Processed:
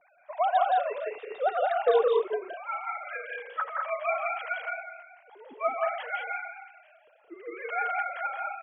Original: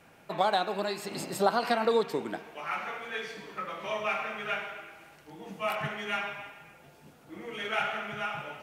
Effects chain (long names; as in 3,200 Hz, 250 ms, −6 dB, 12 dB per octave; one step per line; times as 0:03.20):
three sine waves on the formant tracks
on a send: loudspeakers that aren't time-aligned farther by 58 metres −3 dB, 70 metres −4 dB